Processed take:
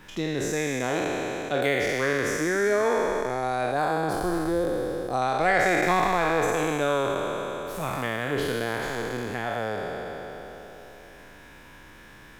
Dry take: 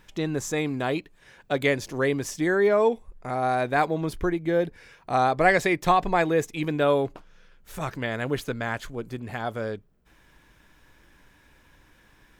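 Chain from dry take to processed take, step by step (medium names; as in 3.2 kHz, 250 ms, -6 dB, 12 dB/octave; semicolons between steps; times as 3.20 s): spectral sustain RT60 2.89 s; 3.72–5.22 s: peaking EQ 2.2 kHz -11.5 dB 0.95 oct; three bands compressed up and down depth 40%; trim -5 dB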